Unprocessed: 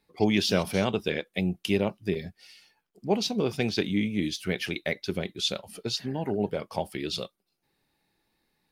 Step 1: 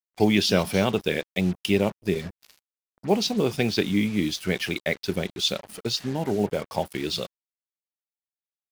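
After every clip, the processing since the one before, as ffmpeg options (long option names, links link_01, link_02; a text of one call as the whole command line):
ffmpeg -i in.wav -af "acrusher=bits=6:mix=0:aa=0.5,volume=3.5dB" out.wav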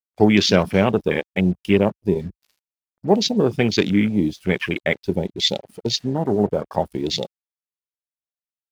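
ffmpeg -i in.wav -af "afwtdn=0.0282,volume=5.5dB" out.wav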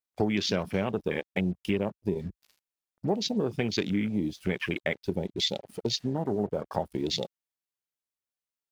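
ffmpeg -i in.wav -af "acompressor=threshold=-28dB:ratio=3" out.wav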